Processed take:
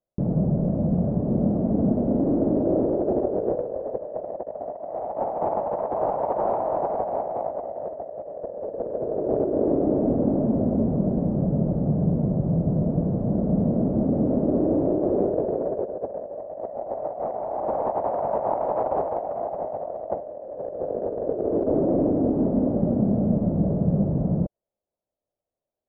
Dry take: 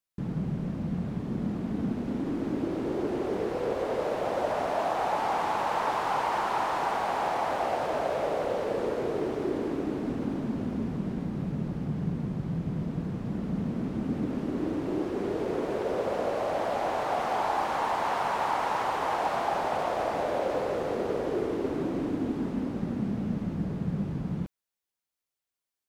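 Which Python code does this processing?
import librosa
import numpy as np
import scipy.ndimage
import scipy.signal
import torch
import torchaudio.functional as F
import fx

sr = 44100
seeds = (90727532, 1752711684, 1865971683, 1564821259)

y = fx.lowpass_res(x, sr, hz=610.0, q=4.9)
y = fx.over_compress(y, sr, threshold_db=-26.0, ratio=-0.5)
y = fx.low_shelf(y, sr, hz=300.0, db=6.0)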